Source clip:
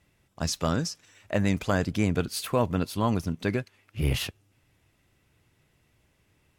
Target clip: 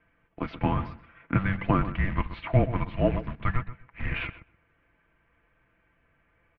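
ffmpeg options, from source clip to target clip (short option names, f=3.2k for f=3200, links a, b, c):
-filter_complex "[0:a]aemphasis=mode=reproduction:type=50kf,bandreject=f=1.2k:w=23,aecho=1:1:5.7:0.54,acrusher=bits=5:mode=log:mix=0:aa=0.000001,asplit=2[a][b];[b]adelay=127,lowpass=f=1.7k:p=1,volume=-11.5dB,asplit=2[c][d];[d]adelay=127,lowpass=f=1.7k:p=1,volume=0.2,asplit=2[e][f];[f]adelay=127,lowpass=f=1.7k:p=1,volume=0.2[g];[a][c][e][g]amix=inputs=4:normalize=0,highpass=f=300:t=q:w=0.5412,highpass=f=300:t=q:w=1.307,lowpass=f=3k:t=q:w=0.5176,lowpass=f=3k:t=q:w=0.7071,lowpass=f=3k:t=q:w=1.932,afreqshift=-390,volume=4.5dB"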